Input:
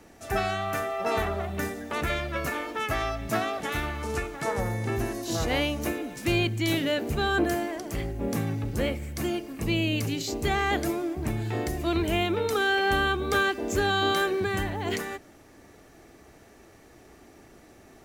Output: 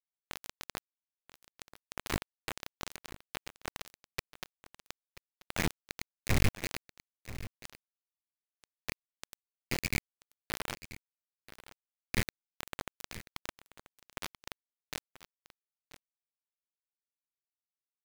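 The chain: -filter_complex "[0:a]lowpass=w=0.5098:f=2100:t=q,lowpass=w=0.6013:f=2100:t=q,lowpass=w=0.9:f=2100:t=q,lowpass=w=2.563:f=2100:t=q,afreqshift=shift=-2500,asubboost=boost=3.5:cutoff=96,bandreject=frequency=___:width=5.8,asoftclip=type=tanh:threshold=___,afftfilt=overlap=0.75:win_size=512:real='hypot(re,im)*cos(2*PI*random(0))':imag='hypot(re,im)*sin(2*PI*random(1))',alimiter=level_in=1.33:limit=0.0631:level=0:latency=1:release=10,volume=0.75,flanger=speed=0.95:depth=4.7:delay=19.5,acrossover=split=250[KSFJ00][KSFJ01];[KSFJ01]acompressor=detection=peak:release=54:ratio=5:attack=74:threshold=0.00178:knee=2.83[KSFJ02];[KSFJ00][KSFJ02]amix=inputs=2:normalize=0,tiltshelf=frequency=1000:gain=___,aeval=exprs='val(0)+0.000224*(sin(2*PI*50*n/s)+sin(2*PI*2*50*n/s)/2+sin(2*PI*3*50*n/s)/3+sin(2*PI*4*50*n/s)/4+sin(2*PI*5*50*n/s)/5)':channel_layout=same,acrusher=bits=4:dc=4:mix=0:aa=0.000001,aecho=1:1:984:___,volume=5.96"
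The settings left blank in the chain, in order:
760, 0.188, 9, 0.168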